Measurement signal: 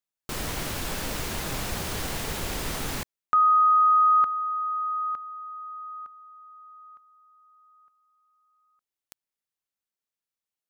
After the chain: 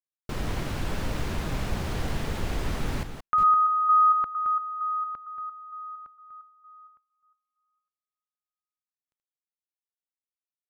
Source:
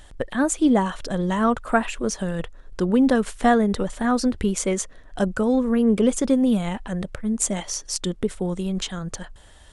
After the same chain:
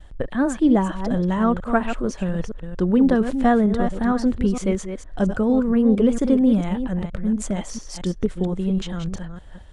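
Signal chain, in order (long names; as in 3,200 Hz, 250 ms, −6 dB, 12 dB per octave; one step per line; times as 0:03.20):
delay that plays each chunk backwards 229 ms, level −8.5 dB
downward expander −45 dBFS, range −33 dB
low-pass filter 2,600 Hz 6 dB per octave
low-shelf EQ 230 Hz +7 dB
level −1.5 dB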